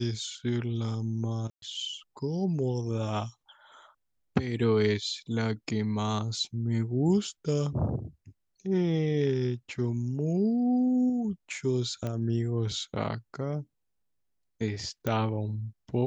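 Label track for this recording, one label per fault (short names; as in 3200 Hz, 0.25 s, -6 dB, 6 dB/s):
1.500000	1.620000	gap 0.122 s
12.070000	12.070000	pop -21 dBFS
15.070000	15.070000	pop -17 dBFS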